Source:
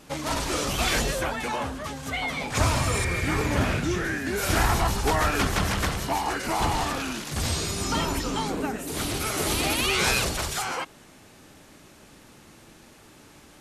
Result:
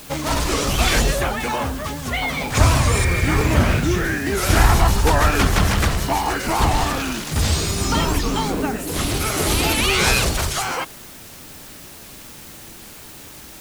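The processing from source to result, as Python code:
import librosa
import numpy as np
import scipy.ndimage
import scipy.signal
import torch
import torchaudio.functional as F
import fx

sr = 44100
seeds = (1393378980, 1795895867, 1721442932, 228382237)

p1 = fx.low_shelf(x, sr, hz=99.0, db=7.0)
p2 = fx.quant_dither(p1, sr, seeds[0], bits=6, dither='triangular')
p3 = p1 + (p2 * librosa.db_to_amplitude(-7.5))
p4 = fx.record_warp(p3, sr, rpm=78.0, depth_cents=160.0)
y = p4 * librosa.db_to_amplitude(2.5)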